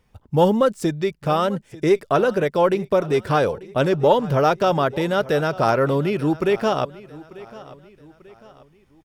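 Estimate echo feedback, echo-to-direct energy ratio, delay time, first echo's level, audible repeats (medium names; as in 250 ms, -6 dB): 42%, -18.5 dB, 892 ms, -19.5 dB, 3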